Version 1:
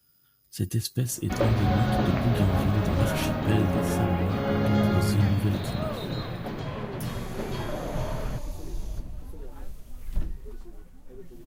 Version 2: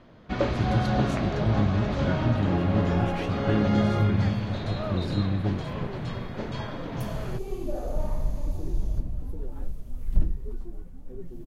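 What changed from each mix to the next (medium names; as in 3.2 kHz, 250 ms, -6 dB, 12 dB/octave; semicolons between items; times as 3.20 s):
speech: add tape spacing loss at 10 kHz 23 dB; first sound: entry -1.00 s; second sound: add tilt shelf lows +6.5 dB, about 760 Hz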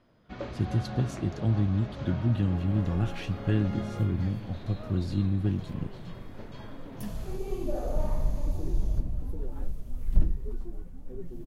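first sound -12.0 dB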